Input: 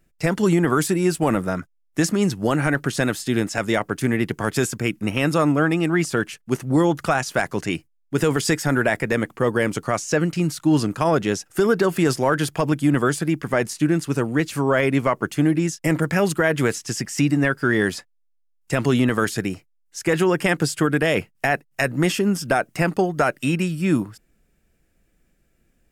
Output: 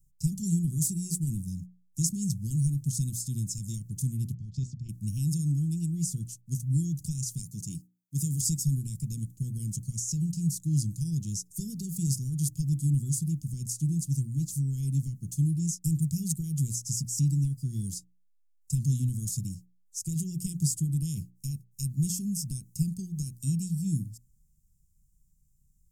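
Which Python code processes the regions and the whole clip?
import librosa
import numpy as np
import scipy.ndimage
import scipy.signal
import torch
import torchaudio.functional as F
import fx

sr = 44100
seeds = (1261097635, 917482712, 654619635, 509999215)

y = fx.chain(x, sr, fx.lowpass(hz=4600.0, slope=24),
    fx.level_steps(step_db=10), at=(4.34, 4.89))
y = fx.chain(y, sr, fx.highpass(hz=120.0, slope=12),
    fx.high_shelf(hz=10000.0, db=5.0), at=(7.42, 8.41))
y = scipy.signal.sosfilt(scipy.signal.ellip(3, 1.0, 60, [150.0, 6500.0], 'bandstop', fs=sr, output='sos'), y)
y = fx.hum_notches(y, sr, base_hz=60, count=7)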